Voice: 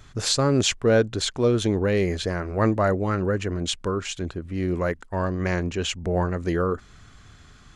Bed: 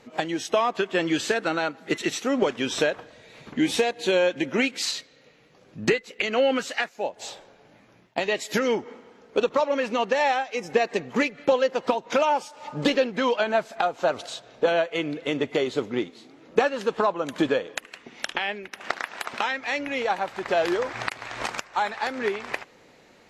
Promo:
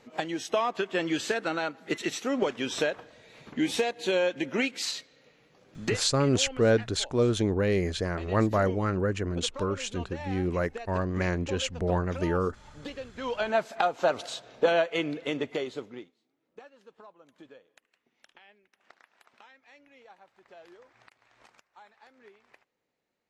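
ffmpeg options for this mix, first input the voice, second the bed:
-filter_complex "[0:a]adelay=5750,volume=-3.5dB[a];[1:a]volume=12dB,afade=t=out:st=5.75:d=0.38:silence=0.211349,afade=t=in:st=13.14:d=0.5:silence=0.149624,afade=t=out:st=14.96:d=1.2:silence=0.0446684[b];[a][b]amix=inputs=2:normalize=0"

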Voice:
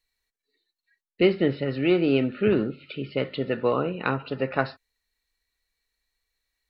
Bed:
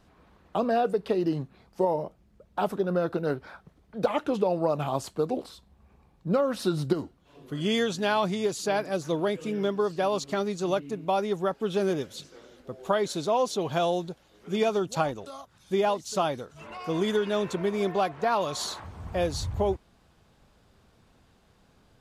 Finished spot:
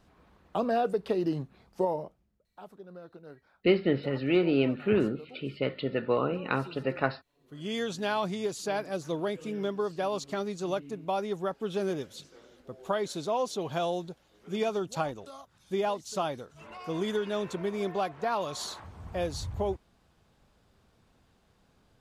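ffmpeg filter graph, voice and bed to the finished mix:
-filter_complex "[0:a]adelay=2450,volume=-3.5dB[a];[1:a]volume=13.5dB,afade=t=out:st=1.8:d=0.62:silence=0.125893,afade=t=in:st=7.38:d=0.55:silence=0.158489[b];[a][b]amix=inputs=2:normalize=0"

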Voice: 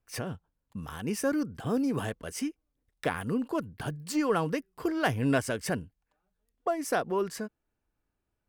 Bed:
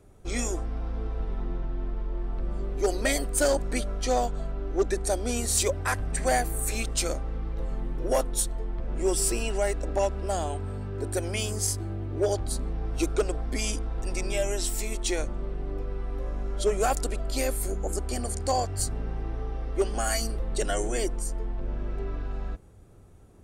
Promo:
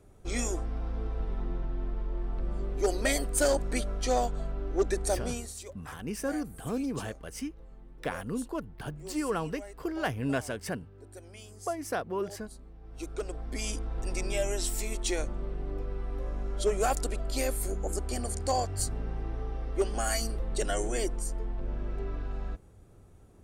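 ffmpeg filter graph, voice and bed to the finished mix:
-filter_complex "[0:a]adelay=5000,volume=-4dB[a];[1:a]volume=14.5dB,afade=t=out:st=5.14:d=0.4:silence=0.141254,afade=t=in:st=12.81:d=1.19:silence=0.149624[b];[a][b]amix=inputs=2:normalize=0"

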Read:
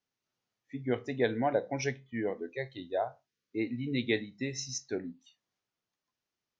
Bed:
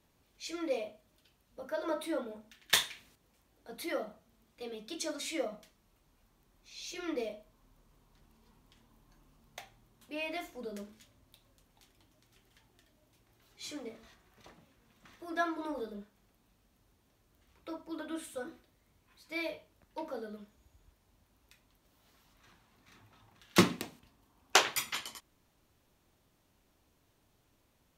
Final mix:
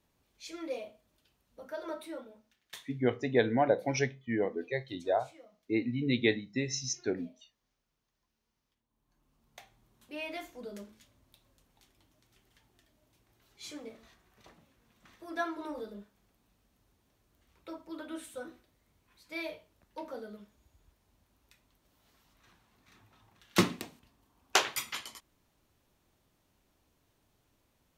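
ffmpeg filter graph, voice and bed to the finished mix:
-filter_complex "[0:a]adelay=2150,volume=2.5dB[a];[1:a]volume=15.5dB,afade=t=out:st=1.77:d=0.93:silence=0.141254,afade=t=in:st=8.88:d=1.09:silence=0.112202[b];[a][b]amix=inputs=2:normalize=0"

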